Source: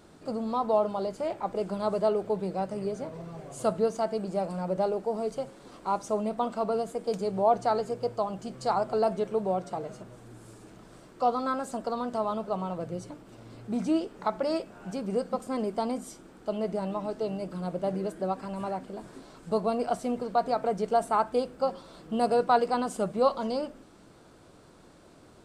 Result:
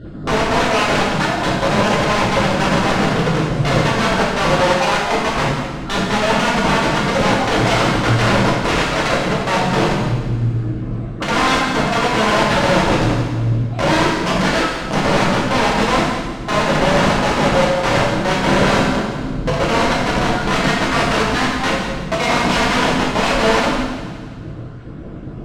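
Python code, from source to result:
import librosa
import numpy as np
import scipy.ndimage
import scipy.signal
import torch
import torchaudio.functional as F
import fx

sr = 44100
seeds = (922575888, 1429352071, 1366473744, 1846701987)

p1 = fx.spec_dropout(x, sr, seeds[0], share_pct=38)
p2 = fx.bass_treble(p1, sr, bass_db=15, treble_db=-12)
p3 = fx.notch(p2, sr, hz=920.0, q=10.0)
p4 = fx.over_compress(p3, sr, threshold_db=-29.0, ratio=-1.0)
p5 = p3 + (p4 * librosa.db_to_amplitude(2.0))
p6 = (np.mod(10.0 ** (18.0 / 20.0) * p5 + 1.0, 2.0) - 1.0) / 10.0 ** (18.0 / 20.0)
p7 = fx.air_absorb(p6, sr, metres=93.0)
p8 = p7 + fx.echo_split(p7, sr, split_hz=490.0, low_ms=111, high_ms=172, feedback_pct=52, wet_db=-11, dry=0)
p9 = fx.rev_gated(p8, sr, seeds[1], gate_ms=340, shape='falling', drr_db=-5.5)
y = p9 * librosa.db_to_amplitude(2.0)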